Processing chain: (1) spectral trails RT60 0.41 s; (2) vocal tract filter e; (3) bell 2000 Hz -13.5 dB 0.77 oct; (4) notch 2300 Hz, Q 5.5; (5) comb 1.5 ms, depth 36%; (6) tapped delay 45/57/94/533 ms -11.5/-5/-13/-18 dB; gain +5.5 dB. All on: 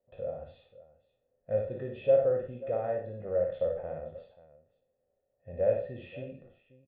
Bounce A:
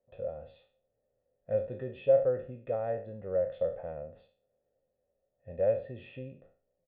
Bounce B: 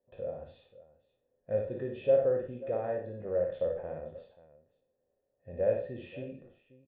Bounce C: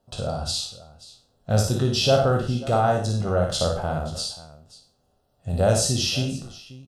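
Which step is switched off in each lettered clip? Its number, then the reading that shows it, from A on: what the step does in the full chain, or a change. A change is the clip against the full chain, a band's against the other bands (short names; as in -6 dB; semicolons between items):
6, echo-to-direct -3.5 dB to none; 5, 250 Hz band +3.5 dB; 2, 500 Hz band -13.0 dB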